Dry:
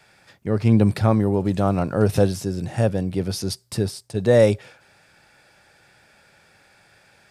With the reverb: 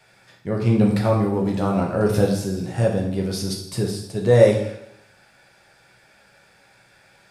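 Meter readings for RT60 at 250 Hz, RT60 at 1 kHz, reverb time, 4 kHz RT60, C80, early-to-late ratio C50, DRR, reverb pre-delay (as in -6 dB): 0.75 s, 0.75 s, 0.80 s, 0.75 s, 8.5 dB, 5.5 dB, -0.5 dB, 4 ms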